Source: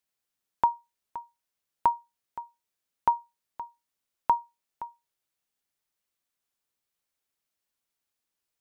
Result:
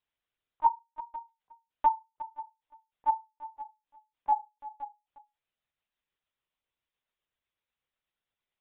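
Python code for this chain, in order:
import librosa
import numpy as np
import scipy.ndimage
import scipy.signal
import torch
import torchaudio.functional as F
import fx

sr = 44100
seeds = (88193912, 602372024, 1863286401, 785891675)

y = fx.pitch_glide(x, sr, semitones=-3.5, runs='starting unshifted')
y = fx.high_shelf(y, sr, hz=2200.0, db=3.5)
y = y + 10.0 ** (-16.0 / 20.0) * np.pad(y, (int(352 * sr / 1000.0), 0))[:len(y)]
y = fx.lpc_vocoder(y, sr, seeds[0], excitation='pitch_kept', order=16)
y = y * librosa.db_to_amplitude(-1.0)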